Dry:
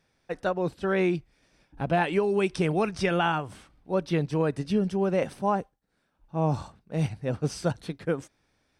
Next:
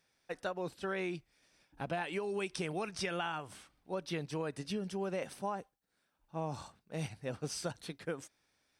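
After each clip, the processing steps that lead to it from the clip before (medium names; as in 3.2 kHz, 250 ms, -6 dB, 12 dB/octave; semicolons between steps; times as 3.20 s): tilt EQ +2 dB/octave; compression, threshold -27 dBFS, peak gain reduction 7.5 dB; trim -6 dB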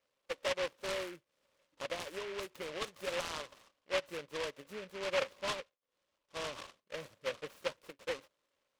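two resonant band-passes 780 Hz, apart 0.96 oct; delay time shaken by noise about 1.9 kHz, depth 0.17 ms; trim +7.5 dB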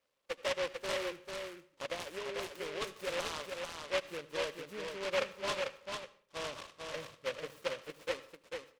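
delay 444 ms -4.5 dB; on a send at -17 dB: reverberation RT60 0.50 s, pre-delay 69 ms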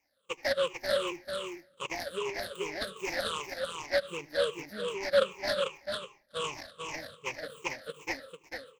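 drifting ripple filter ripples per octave 0.72, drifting -2.6 Hz, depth 21 dB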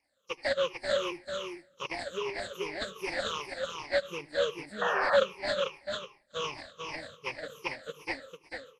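knee-point frequency compression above 3.9 kHz 1.5:1; painted sound noise, 4.81–5.17 s, 480–1900 Hz -29 dBFS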